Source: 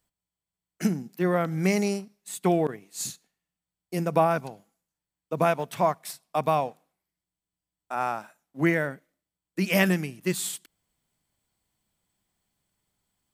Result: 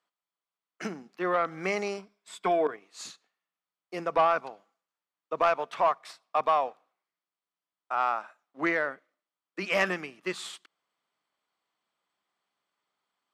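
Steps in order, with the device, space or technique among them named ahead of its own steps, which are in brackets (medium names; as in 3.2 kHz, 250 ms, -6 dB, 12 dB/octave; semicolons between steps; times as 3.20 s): intercom (band-pass 440–4000 Hz; peaking EQ 1.2 kHz +8.5 dB 0.34 oct; saturation -14.5 dBFS, distortion -16 dB); 1.97–2.74 s: rippled EQ curve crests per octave 1.7, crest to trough 8 dB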